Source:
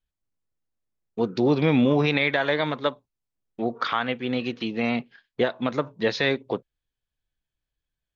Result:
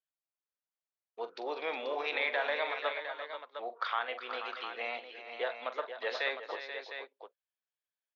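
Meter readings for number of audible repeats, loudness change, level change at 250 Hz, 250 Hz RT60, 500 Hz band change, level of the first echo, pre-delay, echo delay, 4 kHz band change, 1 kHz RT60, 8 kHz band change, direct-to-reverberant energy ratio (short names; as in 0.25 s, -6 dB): 4, -11.5 dB, -29.0 dB, none, -11.5 dB, -12.5 dB, none, 43 ms, -9.0 dB, none, n/a, none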